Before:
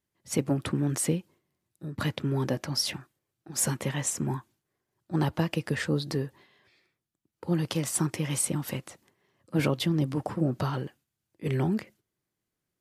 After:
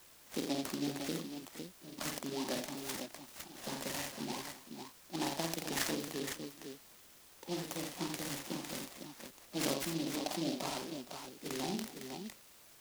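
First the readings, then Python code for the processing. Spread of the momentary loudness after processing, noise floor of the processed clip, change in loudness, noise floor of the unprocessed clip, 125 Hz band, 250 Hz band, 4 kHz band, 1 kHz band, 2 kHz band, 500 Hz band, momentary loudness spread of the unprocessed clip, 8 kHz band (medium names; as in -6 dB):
13 LU, -60 dBFS, -10.0 dB, -85 dBFS, -19.0 dB, -9.5 dB, -4.5 dB, -5.0 dB, -6.0 dB, -8.0 dB, 9 LU, -9.5 dB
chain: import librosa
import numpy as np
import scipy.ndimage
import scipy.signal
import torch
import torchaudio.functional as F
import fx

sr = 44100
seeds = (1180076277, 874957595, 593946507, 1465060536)

p1 = fx.cabinet(x, sr, low_hz=240.0, low_slope=24, high_hz=3100.0, hz=(320.0, 470.0, 710.0, 1400.0, 2000.0), db=(-4, -8, 3, -7, 7))
p2 = p1 + fx.echo_multitap(p1, sr, ms=(49, 85, 262, 467, 506), db=(-4.5, -7.0, -17.0, -17.5, -6.0), dry=0)
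p3 = fx.dmg_noise_colour(p2, sr, seeds[0], colour='white', level_db=-52.0)
p4 = fx.noise_mod_delay(p3, sr, seeds[1], noise_hz=3800.0, depth_ms=0.13)
y = p4 * librosa.db_to_amplitude(-6.0)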